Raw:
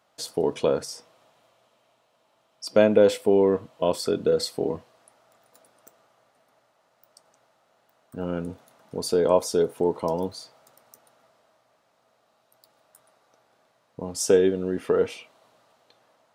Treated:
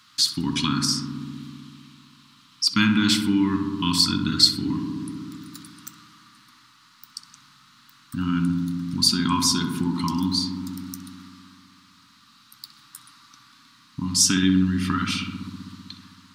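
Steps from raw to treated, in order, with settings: elliptic band-stop 280–1100 Hz, stop band 50 dB; peaking EQ 4.3 kHz +10 dB 0.93 oct; filtered feedback delay 64 ms, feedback 84%, low-pass 1.7 kHz, level -6 dB; in parallel at +1.5 dB: compression, threshold -41 dBFS, peak gain reduction 22 dB; on the sum: trim +5.5 dB

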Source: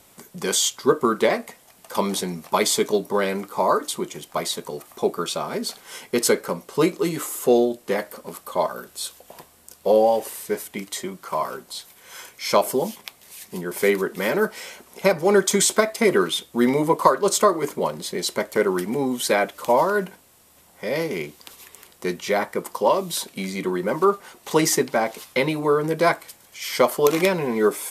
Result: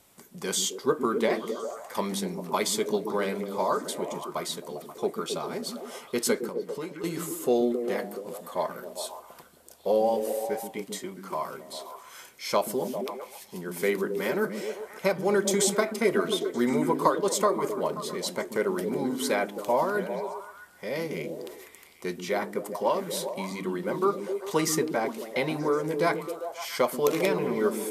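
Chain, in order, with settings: 6.39–7.04 s: compression 2:1, threshold -35 dBFS, peak gain reduction 11.5 dB; repeats whose band climbs or falls 133 ms, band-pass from 220 Hz, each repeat 0.7 oct, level -2 dB; trim -7 dB

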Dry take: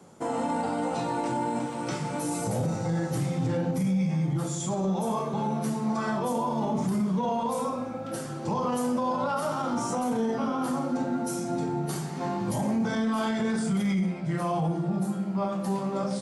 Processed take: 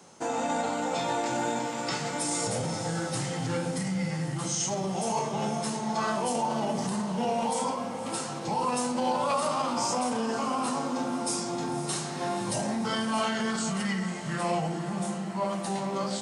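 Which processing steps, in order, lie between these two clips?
tilt shelf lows -6.5 dB, about 690 Hz; formant shift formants -2 st; on a send: echo that smears into a reverb 527 ms, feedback 64%, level -11.5 dB

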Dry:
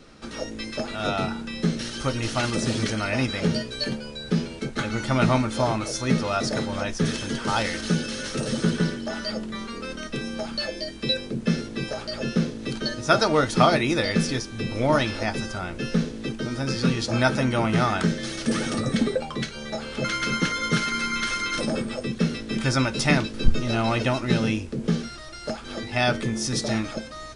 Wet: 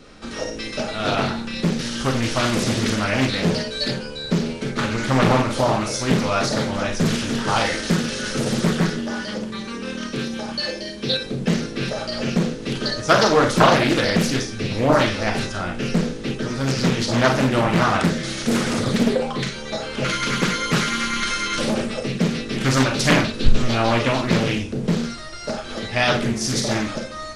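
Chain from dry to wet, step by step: 9.01–11.22 s: comb of notches 670 Hz; Schroeder reverb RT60 0.34 s, combs from 30 ms, DRR 2.5 dB; loudspeaker Doppler distortion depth 0.82 ms; trim +3 dB

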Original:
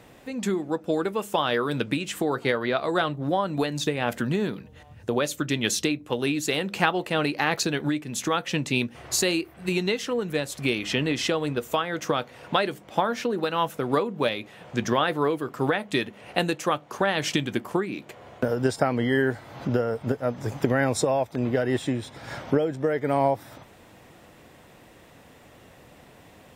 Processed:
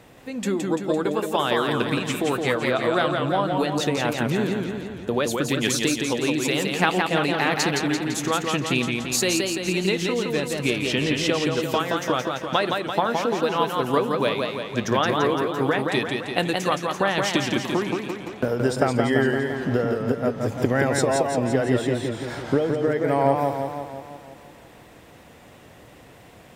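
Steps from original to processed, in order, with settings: modulated delay 170 ms, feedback 60%, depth 108 cents, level -4 dB; trim +1 dB

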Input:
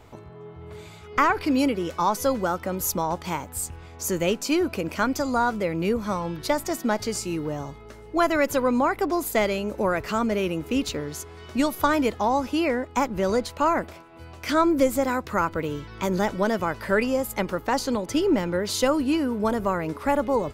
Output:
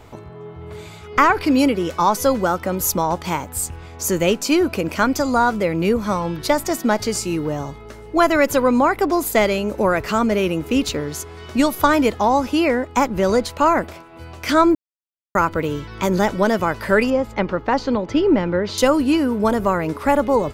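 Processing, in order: 14.75–15.35 s: mute; 17.10–18.78 s: distance through air 200 m; trim +6 dB

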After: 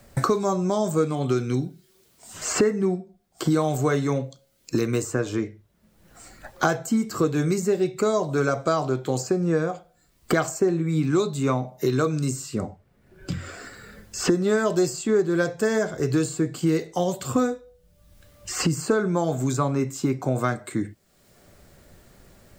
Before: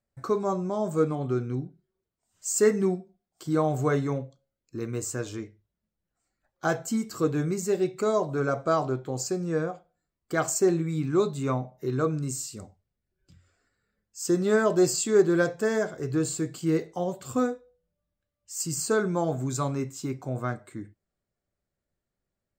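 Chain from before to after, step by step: three bands compressed up and down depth 100%; trim +3 dB

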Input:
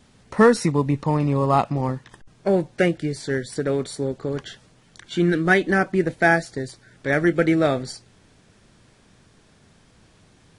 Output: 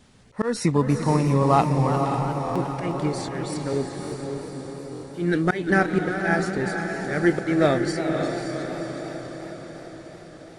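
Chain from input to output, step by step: 3.73–5.14 s: steep low-pass 700 Hz 96 dB/octave; slow attack 217 ms; on a send: echo that smears into a reverb 544 ms, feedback 58%, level -5.5 dB; on the sum: buffer glitch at 2.44/4.00/4.91 s, samples 1024, times 4; modulated delay 353 ms, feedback 50%, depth 122 cents, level -11 dB

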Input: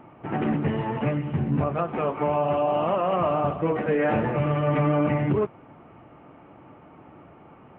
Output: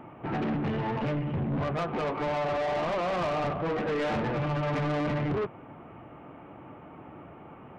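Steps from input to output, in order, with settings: saturation -28.5 dBFS, distortion -7 dB; trim +2 dB

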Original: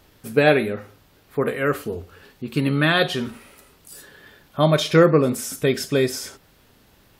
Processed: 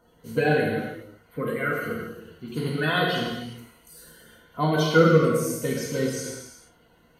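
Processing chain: coarse spectral quantiser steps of 30 dB; rippled EQ curve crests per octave 1.9, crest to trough 10 dB; gated-style reverb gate 450 ms falling, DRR -2.5 dB; trim -8.5 dB

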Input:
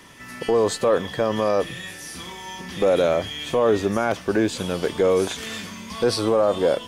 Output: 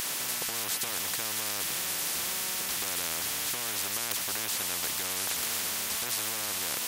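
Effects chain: differentiator; spectrum-flattening compressor 10:1; trim +2.5 dB

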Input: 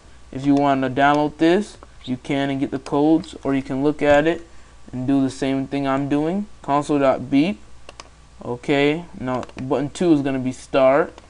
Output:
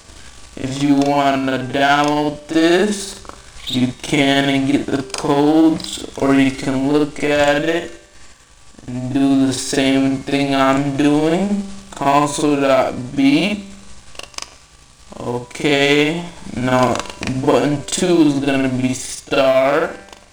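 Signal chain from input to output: waveshaping leveller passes 1; treble shelf 2.2 kHz +10.5 dB; gain riding within 4 dB 0.5 s; de-hum 196.7 Hz, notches 37; granular stretch 1.8×, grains 183 ms; trim +1.5 dB

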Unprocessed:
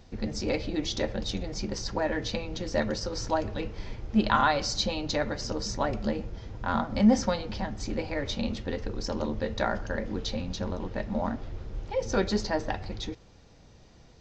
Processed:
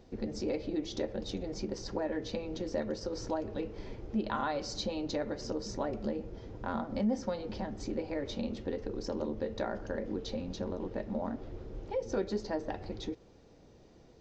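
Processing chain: peaking EQ 380 Hz +11 dB 1.8 oct; compression 2:1, threshold -26 dBFS, peak gain reduction 9.5 dB; trim -8 dB

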